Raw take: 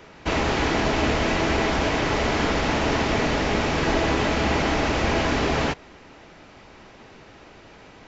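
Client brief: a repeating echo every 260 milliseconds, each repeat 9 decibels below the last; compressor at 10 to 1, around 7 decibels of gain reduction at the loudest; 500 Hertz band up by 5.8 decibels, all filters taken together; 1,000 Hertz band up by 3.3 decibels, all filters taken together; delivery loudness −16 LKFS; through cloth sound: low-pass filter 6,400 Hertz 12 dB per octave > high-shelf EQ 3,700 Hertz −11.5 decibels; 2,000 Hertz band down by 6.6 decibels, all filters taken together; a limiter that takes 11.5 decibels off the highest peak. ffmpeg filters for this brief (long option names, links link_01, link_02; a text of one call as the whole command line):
ffmpeg -i in.wav -af "equalizer=frequency=500:width_type=o:gain=7,equalizer=frequency=1000:width_type=o:gain=4,equalizer=frequency=2000:width_type=o:gain=-7,acompressor=threshold=-22dB:ratio=10,alimiter=level_in=1dB:limit=-24dB:level=0:latency=1,volume=-1dB,lowpass=6400,highshelf=frequency=3700:gain=-11.5,aecho=1:1:260|520|780|1040:0.355|0.124|0.0435|0.0152,volume=18.5dB" out.wav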